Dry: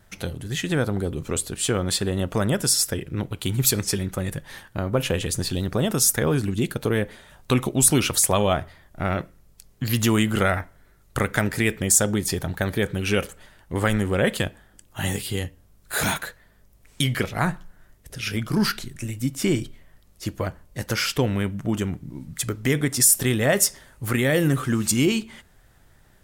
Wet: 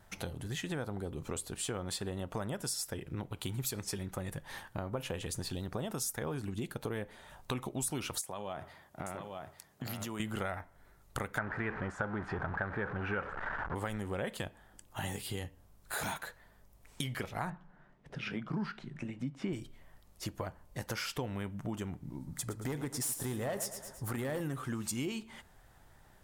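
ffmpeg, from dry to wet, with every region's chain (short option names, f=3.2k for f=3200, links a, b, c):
-filter_complex "[0:a]asettb=1/sr,asplit=3[a][b][c];[a]atrim=end=8.214[d];[b]atrim=start=8.21:end=10.2,asetpts=PTS-STARTPTS,afade=t=in:d=0.004:c=qsin,afade=t=out:st=1.986:d=0.004:c=qsin,acompressor=threshold=-26dB:ratio=12:attack=3.2:release=140:knee=1:detection=peak,highpass=120,aecho=1:1:854:0.376,atrim=end_sample=87759[e];[c]atrim=start=10.196[f];[d][e]acrossfade=d=0.004:c1=hsin:c2=qsin[g];[g][f]acrossfade=d=0.004:c1=qsin:c2=hsin,asettb=1/sr,asplit=3[h][i][j];[h]atrim=end=11.384[k];[i]atrim=start=11.38:end=13.75,asetpts=PTS-STARTPTS,afade=t=in:d=0.004:c=qsin,afade=t=out:st=2.366:d=0.004:c=qsin,aeval=exprs='val(0)+0.5*0.0631*sgn(val(0))':c=same,lowpass=f=1.5k:t=q:w=3.5[l];[j]atrim=start=13.746[m];[k][l]acrossfade=d=0.004:c1=hsin:c2=qsin[n];[n][m]acrossfade=d=0.004:c1=qsin:c2=hsin,asettb=1/sr,asplit=3[o][p][q];[o]atrim=end=17.504[r];[p]atrim=start=17.5:end=19.53,asetpts=PTS-STARTPTS,afade=t=in:d=0.004:c=qsin,afade=t=out:st=2.026:d=0.004:c=qsin,lowpass=2.7k,lowshelf=f=120:t=q:w=3:g=-8.5[s];[q]atrim=start=19.526[t];[r][s]acrossfade=d=0.004:c1=hsin:c2=qsin[u];[u][t]acrossfade=d=0.004:c1=qsin:c2=hsin,asettb=1/sr,asplit=3[v][w][x];[v]atrim=end=22.164[y];[w]atrim=start=22.16:end=24.41,asetpts=PTS-STARTPTS,afade=t=in:d=0.004:c=qsin,afade=t=out:st=2.246:d=0.004:c=qsin,equalizer=f=2.6k:t=o:w=1:g=-7.5,asoftclip=type=hard:threshold=-17dB,aecho=1:1:111|222|333|444:0.266|0.106|0.0426|0.017,atrim=end_sample=99225[z];[x]atrim=start=24.406[aa];[y][z]acrossfade=d=0.004:c1=hsin:c2=qsin[ab];[ab][aa]acrossfade=d=0.004:c1=qsin:c2=hsin,equalizer=f=870:t=o:w=0.92:g=7,acompressor=threshold=-32dB:ratio=3,volume=-5.5dB"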